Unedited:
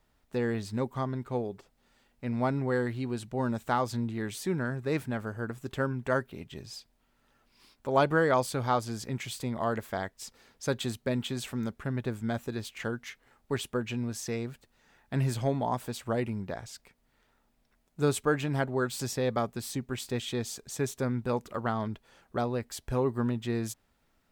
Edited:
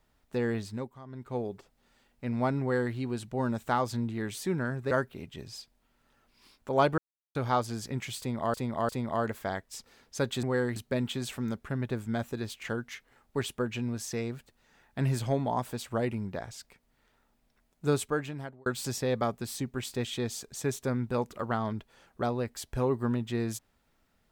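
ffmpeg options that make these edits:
-filter_complex "[0:a]asplit=11[s0][s1][s2][s3][s4][s5][s6][s7][s8][s9][s10];[s0]atrim=end=0.99,asetpts=PTS-STARTPTS,afade=t=out:st=0.57:d=0.42:silence=0.149624[s11];[s1]atrim=start=0.99:end=1.04,asetpts=PTS-STARTPTS,volume=0.15[s12];[s2]atrim=start=1.04:end=4.912,asetpts=PTS-STARTPTS,afade=t=in:d=0.42:silence=0.149624[s13];[s3]atrim=start=6.088:end=8.16,asetpts=PTS-STARTPTS,afade=t=out:st=2.068:d=0.004:c=hsin[s14];[s4]atrim=start=8.16:end=8.53,asetpts=PTS-STARTPTS,volume=0[s15];[s5]atrim=start=8.53:end=9.722,asetpts=PTS-STARTPTS,afade=t=in:d=0.004:c=hsin[s16];[s6]atrim=start=9.368:end=9.722[s17];[s7]atrim=start=9.368:end=10.912[s18];[s8]atrim=start=2.608:end=2.942[s19];[s9]atrim=start=10.908:end=18.81,asetpts=PTS-STARTPTS,afade=t=out:st=7.122:d=0.78[s20];[s10]atrim=start=18.81,asetpts=PTS-STARTPTS,afade=t=in:d=0.004:c=hsin[s21];[s11][s12][s13]concat=n=3:v=0:a=1[s22];[s14][s15][s16]concat=n=3:v=0:a=1[s23];[s22][s23]acrossfade=d=0.004:c1=hsin:c2=hsin[s24];[s24][s17]acrossfade=d=0.004:c1=hsin:c2=hsin[s25];[s25][s18]acrossfade=d=0.004:c1=hsin:c2=hsin[s26];[s26][s19]acrossfade=d=0.004:c1=hsin:c2=hsin[s27];[s20][s21]concat=n=2:v=0:a=1[s28];[s27][s28]acrossfade=d=0.004:c1=hsin:c2=hsin"

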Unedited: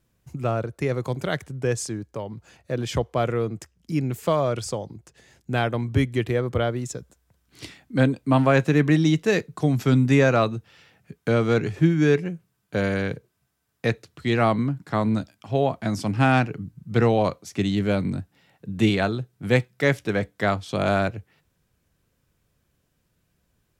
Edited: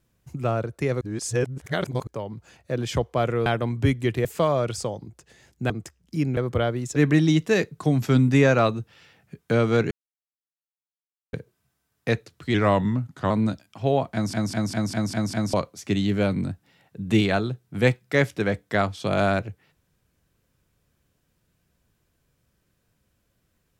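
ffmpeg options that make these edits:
-filter_complex "[0:a]asplit=19[s0][s1][s2][s3][s4][s5][s6][s7][s8][s9][s10][s11][s12][s13][s14][s15][s16][s17][s18];[s0]atrim=end=1.012[s19];[s1]atrim=start=1.008:end=2.072,asetpts=PTS-STARTPTS,areverse[s20];[s2]atrim=start=2.068:end=3.462[s21];[s3]atrim=start=5.578:end=6.372[s22];[s4]atrim=start=4.128:end=5.582[s23];[s5]atrim=start=3.458:end=4.132[s24];[s6]atrim=start=6.368:end=6.962[s25];[s7]atrim=start=8.728:end=11.68,asetpts=PTS-STARTPTS,afade=t=out:st=2.948:d=0.004:c=hsin[s26];[s8]atrim=start=11.68:end=13.1,asetpts=PTS-STARTPTS,volume=0[s27];[s9]atrim=start=13.1:end=14.314,asetpts=PTS-STARTPTS,afade=t=in:d=0.004:c=hsin[s28];[s10]atrim=start=14.31:end=14.99,asetpts=PTS-STARTPTS,asetrate=39249,aresample=44100,atrim=end_sample=33694,asetpts=PTS-STARTPTS[s29];[s11]atrim=start=14.986:end=16.022[s30];[s12]atrim=start=15.818:end=16.022[s31];[s13]atrim=start=15.818:end=16.022[s32];[s14]atrim=start=15.818:end=16.022[s33];[s15]atrim=start=15.818:end=16.022[s34];[s16]atrim=start=15.818:end=16.022[s35];[s17]atrim=start=15.818:end=16.022[s36];[s18]atrim=start=17.218[s37];[s19][s20]acrossfade=d=0.004:c1=hsin:c2=hsin[s38];[s38][s21]acrossfade=d=0.004:c1=hsin:c2=hsin[s39];[s39][s22]acrossfade=d=0.004:c1=hsin:c2=hsin[s40];[s40][s23]acrossfade=d=0.004:c1=hsin:c2=hsin[s41];[s41][s24]acrossfade=d=0.004:c1=hsin:c2=hsin[s42];[s42][s25]acrossfade=d=0.004:c1=hsin:c2=hsin[s43];[s26][s27][s28]concat=n=3:v=0:a=1[s44];[s43][s44]acrossfade=d=0.004:c1=hsin:c2=hsin[s45];[s45][s29]acrossfade=d=0.004:c1=hsin:c2=hsin[s46];[s46][s30]acrossfade=d=0.004:c1=hsin:c2=hsin[s47];[s47][s31]acrossfade=d=0.004:c1=hsin:c2=hsin[s48];[s48][s32]acrossfade=d=0.004:c1=hsin:c2=hsin[s49];[s49][s33]acrossfade=d=0.004:c1=hsin:c2=hsin[s50];[s50][s34]acrossfade=d=0.004:c1=hsin:c2=hsin[s51];[s51][s35]acrossfade=d=0.004:c1=hsin:c2=hsin[s52];[s52][s36]acrossfade=d=0.004:c1=hsin:c2=hsin[s53];[s53][s37]acrossfade=d=0.004:c1=hsin:c2=hsin"

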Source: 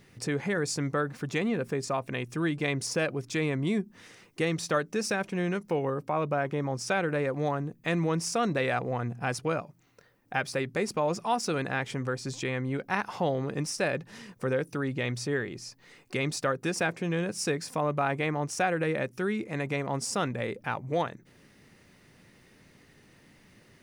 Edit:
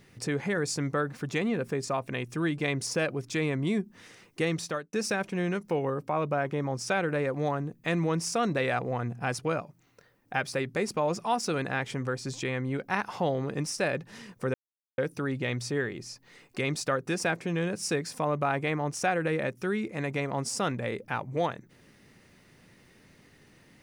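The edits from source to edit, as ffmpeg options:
-filter_complex "[0:a]asplit=3[s0][s1][s2];[s0]atrim=end=4.93,asetpts=PTS-STARTPTS,afade=t=out:st=4.57:d=0.36[s3];[s1]atrim=start=4.93:end=14.54,asetpts=PTS-STARTPTS,afade=t=in:d=0.004:c=hsin,afade=t=out:st=9.606:d=0.004:c=hsin,apad=pad_dur=0.44[s4];[s2]atrim=start=14.54,asetpts=PTS-STARTPTS,afade=t=in:d=0.004:c=hsin[s5];[s3][s4][s5]concat=n=3:v=0:a=1"

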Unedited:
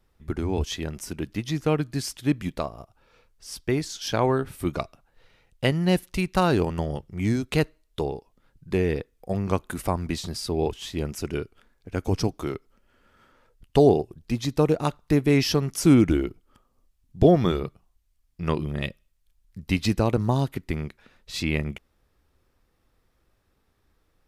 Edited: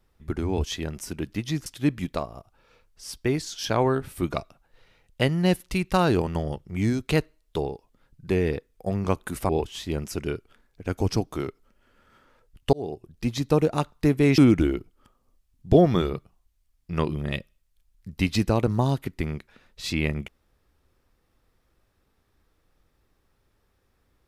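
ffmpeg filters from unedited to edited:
-filter_complex "[0:a]asplit=5[s0][s1][s2][s3][s4];[s0]atrim=end=1.662[s5];[s1]atrim=start=2.088:end=9.922[s6];[s2]atrim=start=10.558:end=13.8,asetpts=PTS-STARTPTS,afade=t=out:st=3.238:d=0.004:c=hsin[s7];[s3]atrim=start=13.8:end=15.452,asetpts=PTS-STARTPTS,afade=t=in:d=0.52[s8];[s4]atrim=start=15.878[s9];[s5][s6]acrossfade=d=0.004:c1=hsin:c2=hsin[s10];[s7][s8]concat=n=2:v=0:a=1[s11];[s10][s11]acrossfade=d=0.004:c1=hsin:c2=hsin[s12];[s12][s9]acrossfade=d=0.004:c1=hsin:c2=hsin"

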